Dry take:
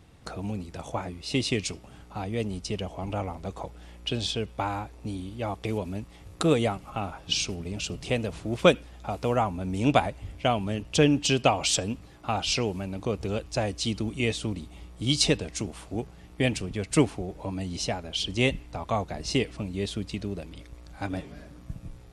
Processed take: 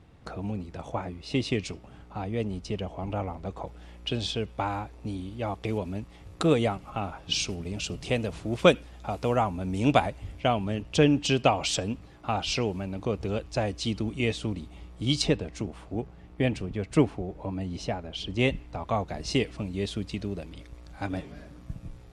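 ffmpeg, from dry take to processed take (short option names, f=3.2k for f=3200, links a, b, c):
-af "asetnsamples=n=441:p=0,asendcmd='3.67 lowpass f 4900;7.34 lowpass f 10000;10.4 lowpass f 4000;15.22 lowpass f 1700;18.39 lowpass f 3100;19.08 lowpass f 6800',lowpass=f=2.5k:p=1"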